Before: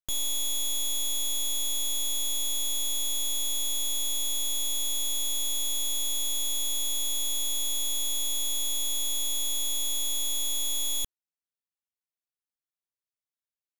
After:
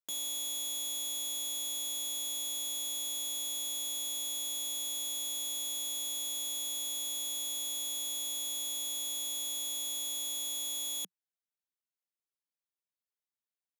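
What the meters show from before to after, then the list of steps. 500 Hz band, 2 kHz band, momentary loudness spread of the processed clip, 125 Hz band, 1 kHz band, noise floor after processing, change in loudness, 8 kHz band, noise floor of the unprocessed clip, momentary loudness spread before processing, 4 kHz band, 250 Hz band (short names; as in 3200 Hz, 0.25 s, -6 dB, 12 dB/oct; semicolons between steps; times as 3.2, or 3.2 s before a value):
-5.0 dB, -6.0 dB, 0 LU, n/a, -5.5 dB, under -85 dBFS, -6.0 dB, -6.0 dB, under -85 dBFS, 0 LU, -6.0 dB, -5.5 dB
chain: elliptic high-pass 180 Hz, stop band 40 dB; gain -5 dB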